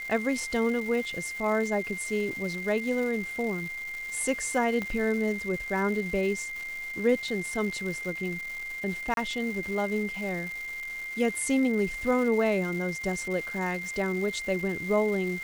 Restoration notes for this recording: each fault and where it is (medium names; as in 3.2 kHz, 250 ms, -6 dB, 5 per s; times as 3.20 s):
crackle 580 per s -36 dBFS
whine 2.1 kHz -34 dBFS
4.82 s: pop -19 dBFS
9.14–9.17 s: dropout 32 ms